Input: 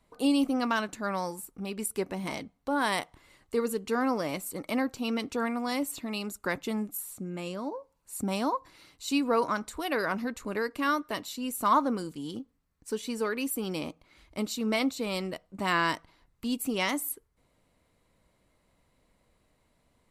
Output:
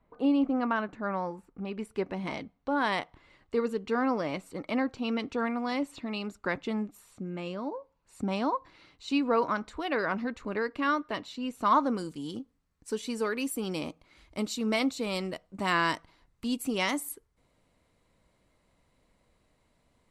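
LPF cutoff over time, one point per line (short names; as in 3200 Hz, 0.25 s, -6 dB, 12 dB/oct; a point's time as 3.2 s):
1.36 s 1800 Hz
2.18 s 3800 Hz
11.57 s 3800 Hz
12.04 s 10000 Hz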